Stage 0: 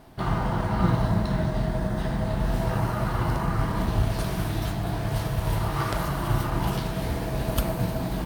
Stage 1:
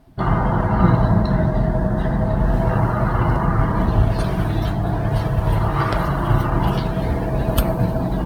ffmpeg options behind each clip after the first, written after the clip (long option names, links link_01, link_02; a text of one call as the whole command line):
ffmpeg -i in.wav -af "afftdn=noise_reduction=14:noise_floor=-39,volume=7.5dB" out.wav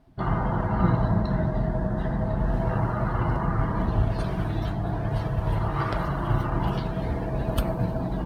ffmpeg -i in.wav -af "highshelf=frequency=9100:gain=-10,volume=-7dB" out.wav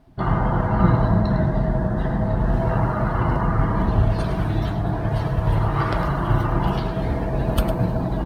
ffmpeg -i in.wav -af "aecho=1:1:105:0.299,volume=4.5dB" out.wav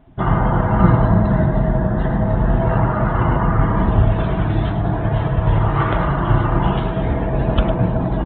ffmpeg -i in.wav -af "aresample=8000,aresample=44100,volume=4dB" out.wav